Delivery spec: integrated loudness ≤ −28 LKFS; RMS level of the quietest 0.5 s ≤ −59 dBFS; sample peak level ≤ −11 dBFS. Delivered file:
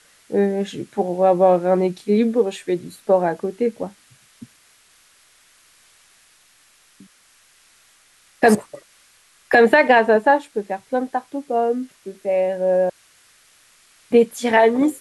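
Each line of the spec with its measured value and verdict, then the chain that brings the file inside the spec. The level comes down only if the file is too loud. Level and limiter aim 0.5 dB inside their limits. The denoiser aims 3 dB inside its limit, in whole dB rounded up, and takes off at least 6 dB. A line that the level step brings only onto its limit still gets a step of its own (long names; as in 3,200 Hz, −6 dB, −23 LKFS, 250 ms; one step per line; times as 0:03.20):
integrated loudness −19.0 LKFS: out of spec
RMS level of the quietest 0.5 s −55 dBFS: out of spec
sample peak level −3.5 dBFS: out of spec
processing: level −9.5 dB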